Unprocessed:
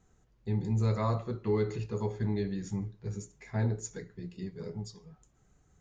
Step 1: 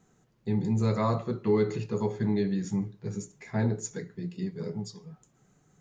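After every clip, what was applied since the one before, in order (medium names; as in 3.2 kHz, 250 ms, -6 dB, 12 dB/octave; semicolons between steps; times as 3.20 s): resonant low shelf 100 Hz -13 dB, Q 1.5; trim +4 dB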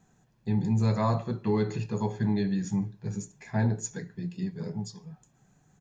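comb 1.2 ms, depth 39%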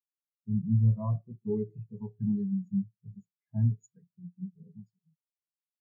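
spectral contrast expander 2.5:1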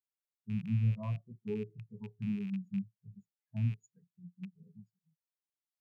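rattle on loud lows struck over -33 dBFS, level -37 dBFS; trim -6 dB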